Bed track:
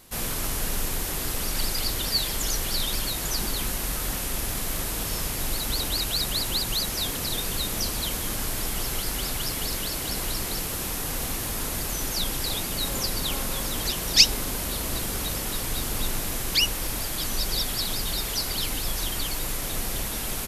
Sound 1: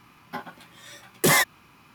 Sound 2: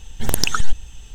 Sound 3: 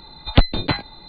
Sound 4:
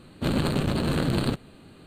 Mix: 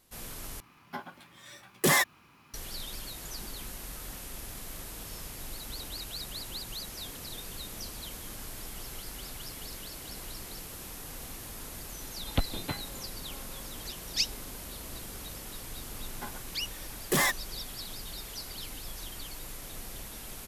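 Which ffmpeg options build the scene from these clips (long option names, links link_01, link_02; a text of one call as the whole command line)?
ffmpeg -i bed.wav -i cue0.wav -i cue1.wav -i cue2.wav -filter_complex "[1:a]asplit=2[link_01][link_02];[0:a]volume=-13dB,asplit=2[link_03][link_04];[link_03]atrim=end=0.604[link_05];[link_01]atrim=end=1.94,asetpts=PTS-STARTPTS,volume=-4.5dB[link_06];[link_04]atrim=start=2.536[link_07];[3:a]atrim=end=1.08,asetpts=PTS-STARTPTS,volume=-14.5dB,afade=type=in:duration=0.004:curve=hsin,afade=type=out:start_time=1.076:duration=0.004:curve=hsin,adelay=12000[link_08];[link_02]atrim=end=1.94,asetpts=PTS-STARTPTS,volume=-7dB,afade=type=in:duration=0.004:curve=hsin,afade=type=out:start_time=1.936:duration=0.004:curve=hsin,adelay=700308S[link_09];[link_05][link_06]acrossfade=duration=0.004:curve1=hsin:curve2=hsin[link_10];[link_10][link_07]acrossfade=duration=0.004:curve1=hsin:curve2=hsin[link_11];[link_11][link_08][link_09]amix=inputs=3:normalize=0" out.wav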